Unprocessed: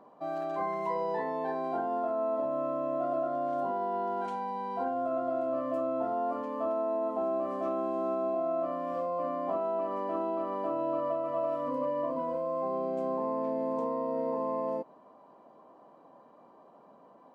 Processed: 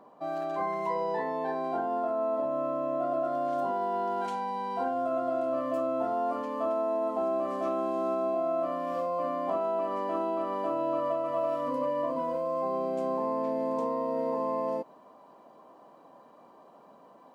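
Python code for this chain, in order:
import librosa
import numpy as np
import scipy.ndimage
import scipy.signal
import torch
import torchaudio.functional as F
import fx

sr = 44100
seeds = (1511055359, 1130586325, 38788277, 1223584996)

y = fx.high_shelf(x, sr, hz=2300.0, db=fx.steps((0.0, 3.5), (3.23, 9.0)))
y = F.gain(torch.from_numpy(y), 1.0).numpy()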